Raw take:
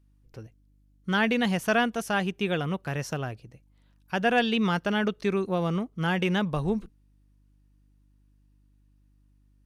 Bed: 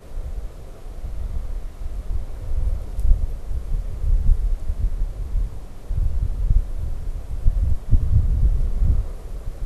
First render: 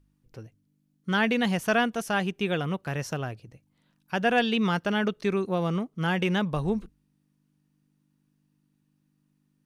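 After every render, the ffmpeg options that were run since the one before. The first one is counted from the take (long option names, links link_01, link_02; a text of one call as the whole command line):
ffmpeg -i in.wav -af "bandreject=frequency=50:width_type=h:width=4,bandreject=frequency=100:width_type=h:width=4" out.wav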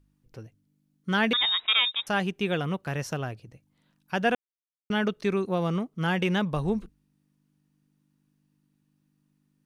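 ffmpeg -i in.wav -filter_complex "[0:a]asettb=1/sr,asplit=3[link_01][link_02][link_03];[link_01]atrim=end=1.334[link_04];[link_02]atrim=start=1.33:end=2.07,asetpts=PTS-STARTPTS,afade=type=in:duration=0.004:curve=qsin,afade=type=out:start_time=0.736:duration=0.004:curve=qsin,lowpass=frequency=3300:width_type=q:width=0.5098,lowpass=frequency=3300:width_type=q:width=0.6013,lowpass=frequency=3300:width_type=q:width=0.9,lowpass=frequency=3300:width_type=q:width=2.563,afreqshift=-3900[link_05];[link_03]atrim=start=2.066[link_06];[link_04][link_05]acrossfade=duration=0.004:curve1=hsin:curve2=qsin[link_07];[link_07][link_06]acrossfade=duration=0.004:curve1=qsin:curve2=hsin,asplit=3[link_08][link_09][link_10];[link_08]atrim=end=4.35,asetpts=PTS-STARTPTS,afade=type=out:start_time=4.346:duration=0.004:curve=hsin[link_11];[link_09]atrim=start=4.35:end=4.9,asetpts=PTS-STARTPTS,volume=0[link_12];[link_10]atrim=start=4.9,asetpts=PTS-STARTPTS,afade=type=in:duration=0.004:curve=hsin[link_13];[link_11][link_12][link_13]concat=n=3:v=0:a=1" out.wav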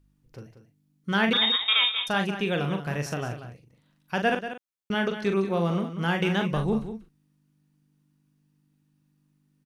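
ffmpeg -i in.wav -filter_complex "[0:a]asplit=2[link_01][link_02];[link_02]adelay=41,volume=-6.5dB[link_03];[link_01][link_03]amix=inputs=2:normalize=0,asplit=2[link_04][link_05];[link_05]aecho=0:1:187:0.282[link_06];[link_04][link_06]amix=inputs=2:normalize=0" out.wav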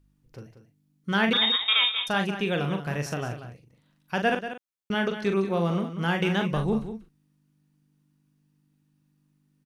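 ffmpeg -i in.wav -af anull out.wav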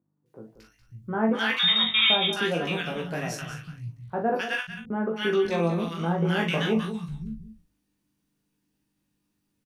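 ffmpeg -i in.wav -filter_complex "[0:a]asplit=2[link_01][link_02];[link_02]adelay=18,volume=-3dB[link_03];[link_01][link_03]amix=inputs=2:normalize=0,acrossover=split=160|1200[link_04][link_05][link_06];[link_06]adelay=260[link_07];[link_04]adelay=550[link_08];[link_08][link_05][link_07]amix=inputs=3:normalize=0" out.wav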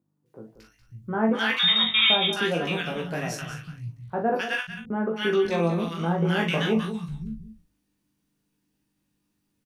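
ffmpeg -i in.wav -af "volume=1dB" out.wav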